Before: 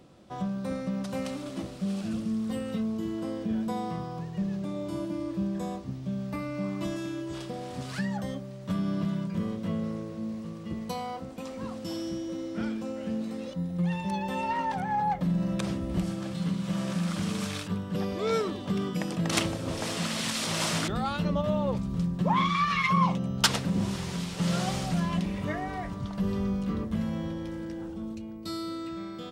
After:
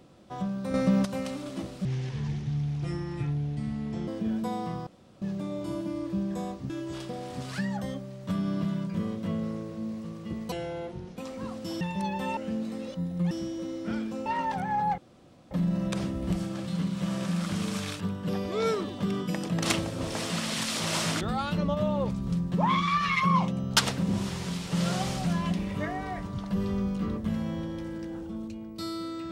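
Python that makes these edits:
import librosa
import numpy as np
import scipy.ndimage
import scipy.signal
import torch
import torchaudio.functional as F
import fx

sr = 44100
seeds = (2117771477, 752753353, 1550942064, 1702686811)

y = fx.edit(x, sr, fx.clip_gain(start_s=0.74, length_s=0.31, db=8.5),
    fx.speed_span(start_s=1.85, length_s=1.47, speed=0.66),
    fx.room_tone_fill(start_s=4.11, length_s=0.35),
    fx.cut(start_s=5.94, length_s=1.16),
    fx.speed_span(start_s=10.92, length_s=0.45, speed=0.69),
    fx.swap(start_s=12.01, length_s=0.95, other_s=13.9, other_length_s=0.56),
    fx.insert_room_tone(at_s=15.18, length_s=0.53), tone=tone)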